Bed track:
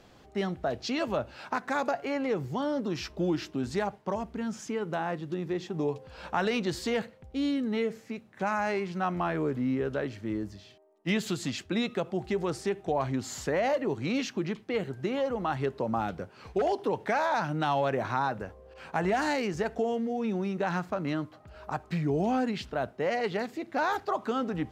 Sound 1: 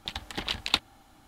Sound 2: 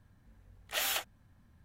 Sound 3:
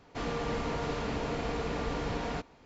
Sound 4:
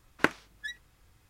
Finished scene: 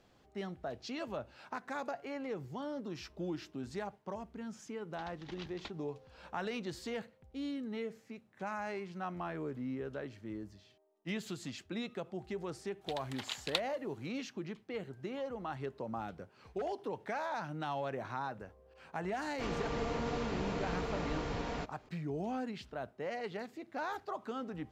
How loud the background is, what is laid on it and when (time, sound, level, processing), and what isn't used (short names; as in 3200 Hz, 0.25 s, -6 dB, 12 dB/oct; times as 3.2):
bed track -10.5 dB
4.91 add 1 -16 dB + CVSD 32 kbps
12.81 add 1 -9.5 dB + HPF 510 Hz
19.24 add 3 -4 dB
not used: 2, 4